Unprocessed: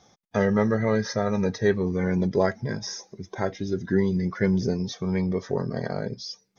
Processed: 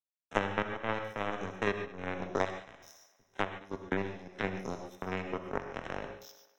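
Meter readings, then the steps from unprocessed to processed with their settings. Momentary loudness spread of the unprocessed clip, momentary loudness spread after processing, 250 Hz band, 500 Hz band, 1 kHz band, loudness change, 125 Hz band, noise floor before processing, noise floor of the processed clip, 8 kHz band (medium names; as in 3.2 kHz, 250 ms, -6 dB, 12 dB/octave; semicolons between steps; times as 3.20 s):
9 LU, 12 LU, -15.5 dB, -11.5 dB, -2.5 dB, -10.5 dB, -16.5 dB, -65 dBFS, -73 dBFS, no reading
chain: spectrogram pixelated in time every 50 ms; bass shelf 240 Hz -11.5 dB; power-law waveshaper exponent 3; Butterworth band-stop 4.6 kHz, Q 3.8; on a send: thinning echo 102 ms, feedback 44%, high-pass 200 Hz, level -19.5 dB; on the sum: gated-style reverb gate 160 ms flat, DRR 6.5 dB; three bands compressed up and down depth 100%; trim +8.5 dB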